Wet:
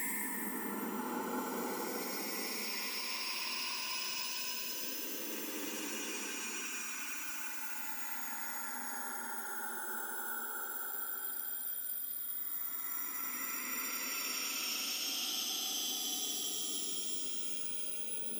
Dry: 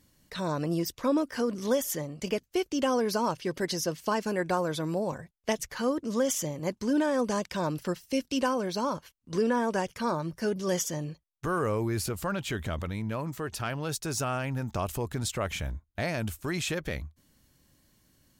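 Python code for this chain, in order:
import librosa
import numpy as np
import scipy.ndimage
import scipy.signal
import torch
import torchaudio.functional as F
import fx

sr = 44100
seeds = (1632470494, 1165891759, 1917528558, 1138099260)

y = fx.octave_mirror(x, sr, pivot_hz=1800.0)
y = fx.transient(y, sr, attack_db=-8, sustain_db=8)
y = fx.filter_lfo_notch(y, sr, shape='sine', hz=1.6, low_hz=300.0, high_hz=1700.0, q=2.7)
y = fx.paulstretch(y, sr, seeds[0], factor=26.0, window_s=0.1, from_s=12.59)
y = F.gain(torch.from_numpy(y), 3.0).numpy()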